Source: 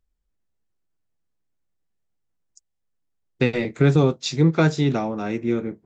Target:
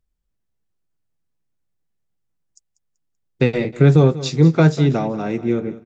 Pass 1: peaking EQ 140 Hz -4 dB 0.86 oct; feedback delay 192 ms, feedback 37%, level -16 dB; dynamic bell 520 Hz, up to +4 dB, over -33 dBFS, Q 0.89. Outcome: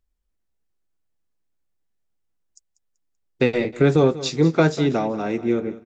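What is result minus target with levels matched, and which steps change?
125 Hz band -5.0 dB
change: peaking EQ 140 Hz +5.5 dB 0.86 oct

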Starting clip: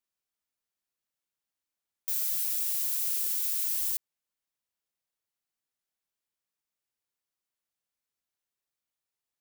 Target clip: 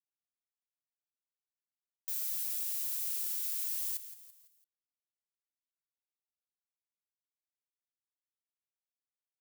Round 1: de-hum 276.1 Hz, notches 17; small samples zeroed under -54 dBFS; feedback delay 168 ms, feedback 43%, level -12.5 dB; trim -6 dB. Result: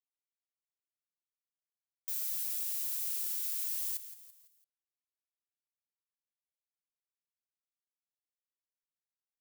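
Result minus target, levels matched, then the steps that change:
small samples zeroed: distortion +9 dB
change: small samples zeroed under -65.5 dBFS

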